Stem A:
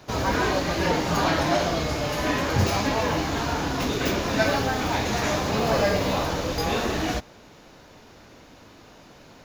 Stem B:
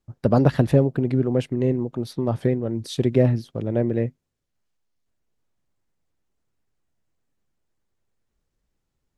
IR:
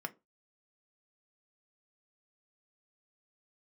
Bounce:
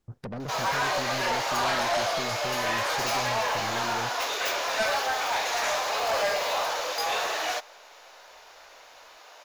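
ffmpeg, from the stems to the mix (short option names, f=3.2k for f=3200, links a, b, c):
-filter_complex "[0:a]highpass=f=590:w=0.5412,highpass=f=590:w=1.3066,adelay=400,volume=2.5dB[a];[1:a]acompressor=threshold=-29dB:ratio=6,asoftclip=type=tanh:threshold=-33.5dB,volume=1.5dB,asplit=2[b][c];[c]volume=-14.5dB[d];[2:a]atrim=start_sample=2205[e];[d][e]afir=irnorm=-1:irlink=0[f];[a][b][f]amix=inputs=3:normalize=0,asoftclip=type=tanh:threshold=-21dB"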